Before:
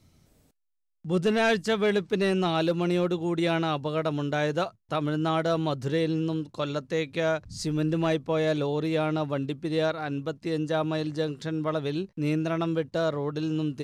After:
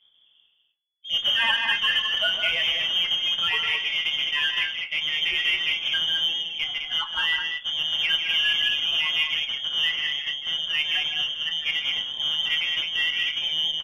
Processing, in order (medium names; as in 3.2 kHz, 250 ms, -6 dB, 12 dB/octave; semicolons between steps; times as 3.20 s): coarse spectral quantiser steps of 30 dB; on a send at -8 dB: high-pass 320 Hz 12 dB/octave + reverberation RT60 0.45 s, pre-delay 3 ms; on the sum: frequency inversion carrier 3.4 kHz; doubling 27 ms -12 dB; loudspeakers at several distances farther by 52 m -9 dB, 72 m -5 dB; Chebyshev shaper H 8 -36 dB, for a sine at -10 dBFS; dynamic bell 1.5 kHz, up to +5 dB, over -38 dBFS, Q 1.1; trim -1.5 dB